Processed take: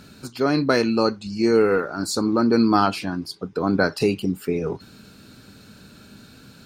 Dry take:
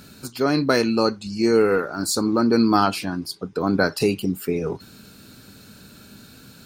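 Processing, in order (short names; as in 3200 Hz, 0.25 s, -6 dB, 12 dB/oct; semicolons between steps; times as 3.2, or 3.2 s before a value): high shelf 9200 Hz -11.5 dB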